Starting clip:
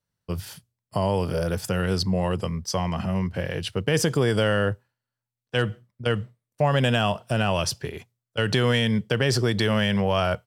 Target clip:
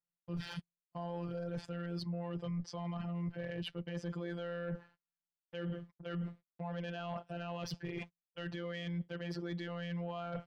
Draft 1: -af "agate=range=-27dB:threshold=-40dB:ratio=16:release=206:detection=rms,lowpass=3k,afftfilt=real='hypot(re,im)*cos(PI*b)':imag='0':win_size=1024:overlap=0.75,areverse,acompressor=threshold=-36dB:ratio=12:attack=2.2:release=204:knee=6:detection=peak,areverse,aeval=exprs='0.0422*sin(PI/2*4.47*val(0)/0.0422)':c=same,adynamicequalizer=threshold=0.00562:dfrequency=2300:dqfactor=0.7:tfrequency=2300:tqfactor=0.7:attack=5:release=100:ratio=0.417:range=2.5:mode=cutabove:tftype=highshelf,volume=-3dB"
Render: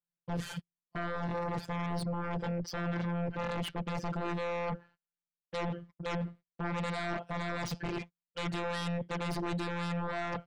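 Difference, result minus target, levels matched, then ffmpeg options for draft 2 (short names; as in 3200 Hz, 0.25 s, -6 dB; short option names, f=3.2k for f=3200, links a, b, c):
compressor: peak gain reduction -10.5 dB
-af "agate=range=-27dB:threshold=-40dB:ratio=16:release=206:detection=rms,lowpass=3k,afftfilt=real='hypot(re,im)*cos(PI*b)':imag='0':win_size=1024:overlap=0.75,areverse,acompressor=threshold=-47.5dB:ratio=12:attack=2.2:release=204:knee=6:detection=peak,areverse,aeval=exprs='0.0422*sin(PI/2*4.47*val(0)/0.0422)':c=same,adynamicequalizer=threshold=0.00562:dfrequency=2300:dqfactor=0.7:tfrequency=2300:tqfactor=0.7:attack=5:release=100:ratio=0.417:range=2.5:mode=cutabove:tftype=highshelf,volume=-3dB"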